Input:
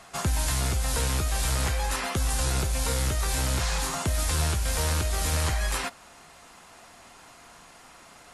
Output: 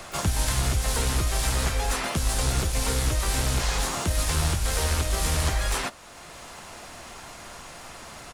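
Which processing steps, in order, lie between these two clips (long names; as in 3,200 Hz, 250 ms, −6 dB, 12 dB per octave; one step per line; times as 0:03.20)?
pitch-shifted copies added −12 semitones −9 dB, −3 semitones −6 dB, +12 semitones −17 dB
multiband upward and downward compressor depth 40%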